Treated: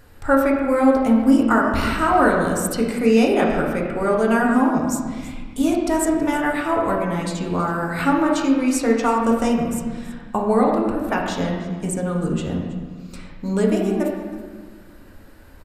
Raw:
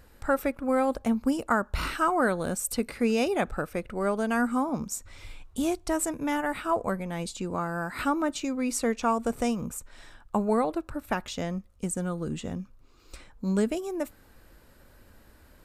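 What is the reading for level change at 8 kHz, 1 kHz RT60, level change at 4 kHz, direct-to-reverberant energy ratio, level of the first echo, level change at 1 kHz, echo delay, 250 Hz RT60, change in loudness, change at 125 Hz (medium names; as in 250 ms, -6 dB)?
+4.0 dB, 1.4 s, +6.0 dB, -2.0 dB, -17.5 dB, +8.5 dB, 324 ms, 2.1 s, +9.0 dB, +9.0 dB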